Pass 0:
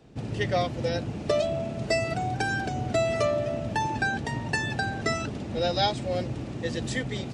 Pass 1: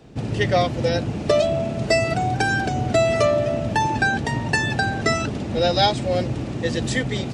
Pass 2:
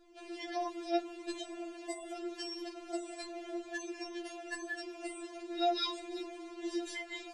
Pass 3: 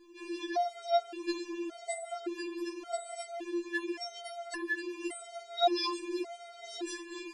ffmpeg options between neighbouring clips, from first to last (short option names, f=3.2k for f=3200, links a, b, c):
-af "acontrast=83"
-af "flanger=delay=6.6:depth=4:regen=53:speed=0.77:shape=sinusoidal,afftfilt=real='re*4*eq(mod(b,16),0)':imag='im*4*eq(mod(b,16),0)':win_size=2048:overlap=0.75,volume=-7dB"
-af "lowshelf=f=74:g=-11.5,afftfilt=real='re*gt(sin(2*PI*0.88*pts/sr)*(1-2*mod(floor(b*sr/1024/400),2)),0)':imag='im*gt(sin(2*PI*0.88*pts/sr)*(1-2*mod(floor(b*sr/1024/400),2)),0)':win_size=1024:overlap=0.75,volume=7dB"